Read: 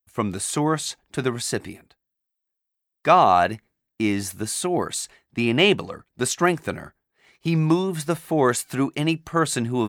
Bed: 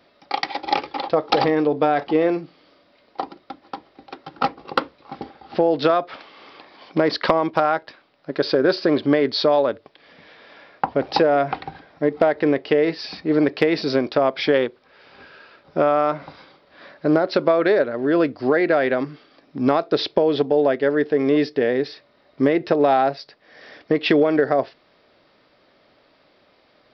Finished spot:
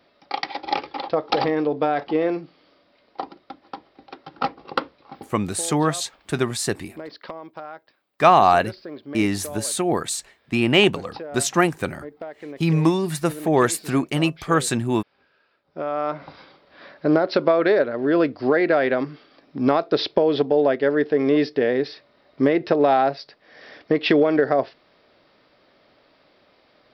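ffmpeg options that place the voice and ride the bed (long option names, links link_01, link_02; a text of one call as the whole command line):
ffmpeg -i stem1.wav -i stem2.wav -filter_complex "[0:a]adelay=5150,volume=1.5dB[link_01];[1:a]volume=14.5dB,afade=type=out:start_time=4.99:duration=0.47:silence=0.177828,afade=type=in:start_time=15.67:duration=0.74:silence=0.133352[link_02];[link_01][link_02]amix=inputs=2:normalize=0" out.wav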